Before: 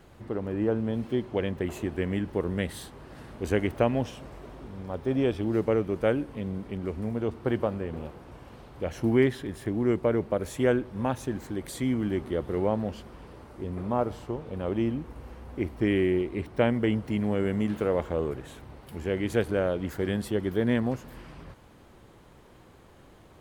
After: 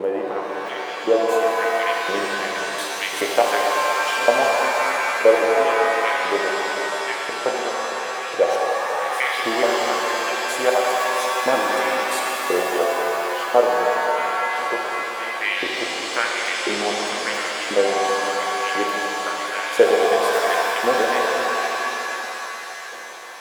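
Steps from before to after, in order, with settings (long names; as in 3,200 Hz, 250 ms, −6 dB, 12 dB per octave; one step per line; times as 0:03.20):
slices reordered back to front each 214 ms, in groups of 3
in parallel at +2 dB: downward compressor, threshold −33 dBFS, peak gain reduction 15 dB
on the sum: auto-filter high-pass saw up 0.96 Hz 450–2,900 Hz
reverb with rising layers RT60 3.7 s, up +7 semitones, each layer −2 dB, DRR −1 dB
level +3 dB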